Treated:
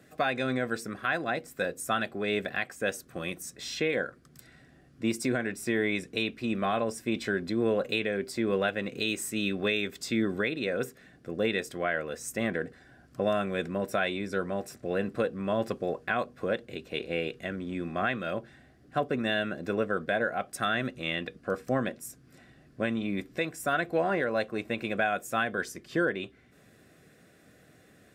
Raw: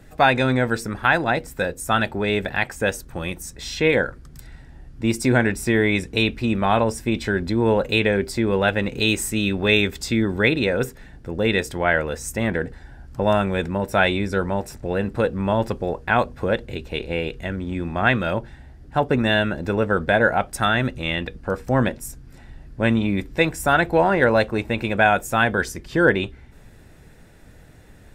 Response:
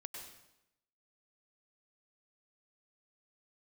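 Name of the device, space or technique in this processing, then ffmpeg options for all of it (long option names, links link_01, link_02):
PA system with an anti-feedback notch: -af "highpass=170,asuperstop=centerf=890:order=8:qfactor=5,alimiter=limit=-11.5dB:level=0:latency=1:release=497,volume=-5.5dB"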